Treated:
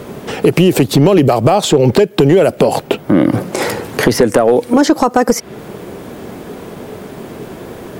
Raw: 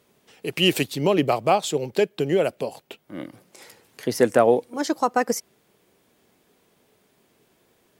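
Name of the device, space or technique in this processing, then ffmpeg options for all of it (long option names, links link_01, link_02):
mastering chain: -filter_complex "[0:a]equalizer=frequency=1400:width_type=o:width=0.77:gain=2.5,acrossover=split=1400|4500[link_01][link_02][link_03];[link_01]acompressor=threshold=-32dB:ratio=4[link_04];[link_02]acompressor=threshold=-42dB:ratio=4[link_05];[link_03]acompressor=threshold=-43dB:ratio=4[link_06];[link_04][link_05][link_06]amix=inputs=3:normalize=0,acompressor=threshold=-35dB:ratio=2.5,asoftclip=type=tanh:threshold=-26dB,tiltshelf=frequency=1300:gain=7,asoftclip=type=hard:threshold=-25dB,alimiter=level_in=30.5dB:limit=-1dB:release=50:level=0:latency=1,volume=-1dB"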